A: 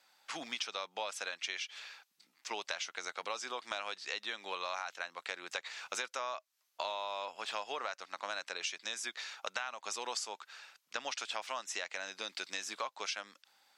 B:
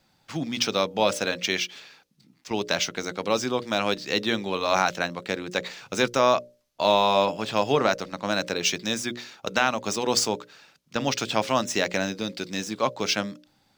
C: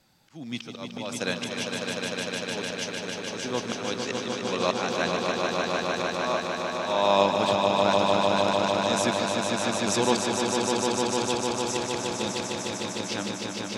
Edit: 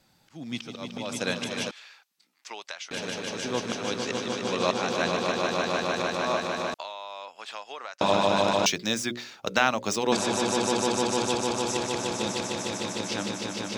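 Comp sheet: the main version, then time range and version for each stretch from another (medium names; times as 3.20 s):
C
1.71–2.91 s: from A
6.74–8.01 s: from A
8.66–10.12 s: from B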